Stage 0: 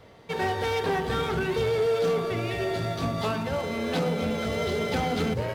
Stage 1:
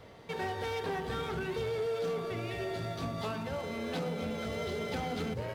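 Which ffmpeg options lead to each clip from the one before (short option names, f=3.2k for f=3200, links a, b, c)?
-af "acompressor=threshold=-45dB:ratio=1.5,volume=-1dB"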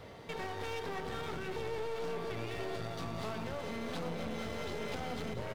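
-af "alimiter=level_in=7dB:limit=-24dB:level=0:latency=1:release=248,volume=-7dB,aeval=exprs='clip(val(0),-1,0.00398)':c=same,aecho=1:1:680:0.282,volume=2.5dB"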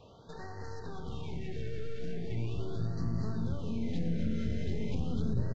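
-af "asubboost=boost=10:cutoff=240,aresample=16000,aresample=44100,afftfilt=real='re*(1-between(b*sr/1024,940*pow(2900/940,0.5+0.5*sin(2*PI*0.4*pts/sr))/1.41,940*pow(2900/940,0.5+0.5*sin(2*PI*0.4*pts/sr))*1.41))':imag='im*(1-between(b*sr/1024,940*pow(2900/940,0.5+0.5*sin(2*PI*0.4*pts/sr))/1.41,940*pow(2900/940,0.5+0.5*sin(2*PI*0.4*pts/sr))*1.41))':win_size=1024:overlap=0.75,volume=-5dB"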